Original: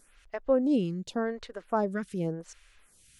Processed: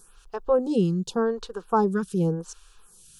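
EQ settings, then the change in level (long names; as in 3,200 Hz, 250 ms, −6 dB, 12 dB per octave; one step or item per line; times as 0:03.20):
phaser with its sweep stopped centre 410 Hz, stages 8
+9.0 dB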